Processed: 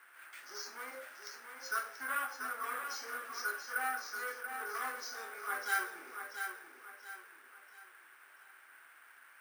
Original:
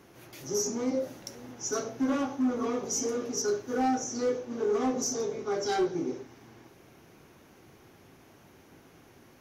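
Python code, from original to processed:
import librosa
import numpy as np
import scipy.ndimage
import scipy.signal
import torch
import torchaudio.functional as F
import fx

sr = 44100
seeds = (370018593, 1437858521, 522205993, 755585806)

p1 = fx.ladder_bandpass(x, sr, hz=1700.0, resonance_pct=60)
p2 = p1 + fx.echo_feedback(p1, sr, ms=684, feedback_pct=37, wet_db=-7.0, dry=0)
p3 = np.repeat(p2[::4], 4)[:len(p2)]
y = p3 * librosa.db_to_amplitude(11.0)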